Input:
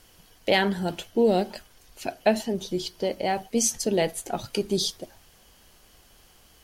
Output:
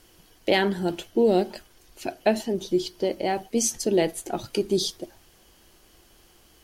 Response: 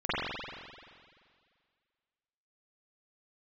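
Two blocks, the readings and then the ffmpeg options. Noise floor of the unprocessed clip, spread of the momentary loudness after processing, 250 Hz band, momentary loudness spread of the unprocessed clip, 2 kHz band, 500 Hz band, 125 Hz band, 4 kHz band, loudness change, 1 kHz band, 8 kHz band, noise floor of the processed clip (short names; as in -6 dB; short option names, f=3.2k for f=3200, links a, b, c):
-57 dBFS, 12 LU, +1.5 dB, 12 LU, -1.0 dB, +1.5 dB, -0.5 dB, -1.0 dB, +0.5 dB, -1.0 dB, -1.0 dB, -57 dBFS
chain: -af "equalizer=f=340:t=o:w=0.39:g=9,volume=-1dB"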